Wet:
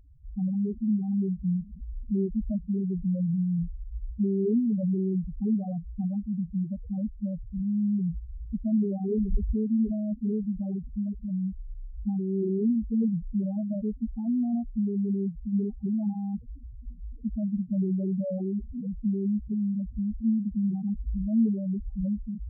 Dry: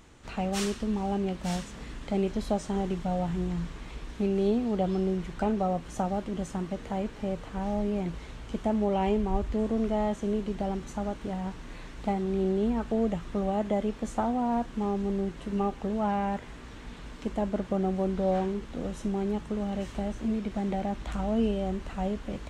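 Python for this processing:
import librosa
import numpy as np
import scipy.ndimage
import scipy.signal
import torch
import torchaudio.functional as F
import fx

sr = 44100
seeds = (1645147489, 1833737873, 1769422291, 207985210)

y = fx.spec_topn(x, sr, count=2)
y = scipy.ndimage.gaussian_filter1d(y, 19.0, mode='constant')
y = y * librosa.db_to_amplitude(7.0)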